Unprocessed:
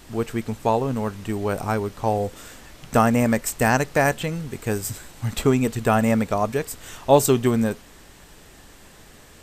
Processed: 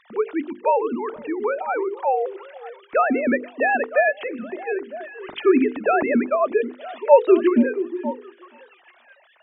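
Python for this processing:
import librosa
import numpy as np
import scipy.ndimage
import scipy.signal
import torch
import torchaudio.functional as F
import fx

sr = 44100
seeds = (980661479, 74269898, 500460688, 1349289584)

y = fx.sine_speech(x, sr)
y = fx.hum_notches(y, sr, base_hz=50, count=10)
y = fx.echo_stepped(y, sr, ms=476, hz=320.0, octaves=1.4, feedback_pct=70, wet_db=-10.5)
y = y * librosa.db_to_amplitude(1.5)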